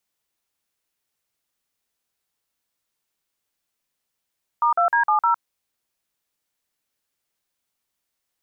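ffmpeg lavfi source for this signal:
ffmpeg -f lavfi -i "aevalsrc='0.126*clip(min(mod(t,0.154),0.108-mod(t,0.154))/0.002,0,1)*(eq(floor(t/0.154),0)*(sin(2*PI*941*mod(t,0.154))+sin(2*PI*1209*mod(t,0.154)))+eq(floor(t/0.154),1)*(sin(2*PI*697*mod(t,0.154))+sin(2*PI*1336*mod(t,0.154)))+eq(floor(t/0.154),2)*(sin(2*PI*941*mod(t,0.154))+sin(2*PI*1633*mod(t,0.154)))+eq(floor(t/0.154),3)*(sin(2*PI*852*mod(t,0.154))+sin(2*PI*1209*mod(t,0.154)))+eq(floor(t/0.154),4)*(sin(2*PI*941*mod(t,0.154))+sin(2*PI*1336*mod(t,0.154))))':duration=0.77:sample_rate=44100" out.wav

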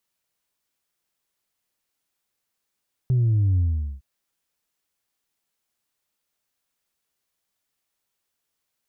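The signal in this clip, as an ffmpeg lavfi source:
ffmpeg -f lavfi -i "aevalsrc='0.141*clip((0.91-t)/0.43,0,1)*tanh(1.12*sin(2*PI*130*0.91/log(65/130)*(exp(log(65/130)*t/0.91)-1)))/tanh(1.12)':duration=0.91:sample_rate=44100" out.wav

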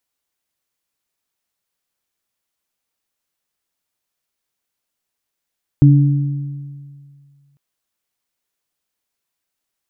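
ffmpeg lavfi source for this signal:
ffmpeg -f lavfi -i "aevalsrc='0.596*pow(10,-3*t/2.07)*sin(2*PI*141*t)+0.282*pow(10,-3*t/1.44)*sin(2*PI*290*t)':duration=1.75:sample_rate=44100" out.wav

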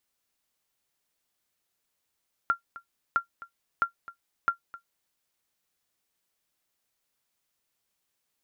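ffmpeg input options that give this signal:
ffmpeg -f lavfi -i "aevalsrc='0.188*(sin(2*PI*1380*mod(t,0.66))*exp(-6.91*mod(t,0.66)/0.11)+0.119*sin(2*PI*1380*max(mod(t,0.66)-0.26,0))*exp(-6.91*max(mod(t,0.66)-0.26,0)/0.11))':duration=2.64:sample_rate=44100" out.wav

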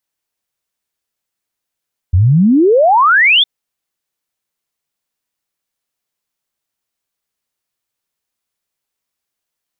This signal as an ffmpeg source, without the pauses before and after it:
ffmpeg -f lavfi -i "aevalsrc='0.501*clip(min(t,1.31-t)/0.01,0,1)*sin(2*PI*82*1.31/log(3600/82)*(exp(log(3600/82)*t/1.31)-1))':duration=1.31:sample_rate=44100" out.wav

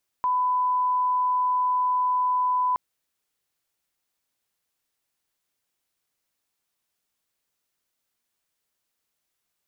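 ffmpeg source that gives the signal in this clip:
ffmpeg -f lavfi -i "sine=frequency=1000:duration=2.52:sample_rate=44100,volume=-1.94dB" out.wav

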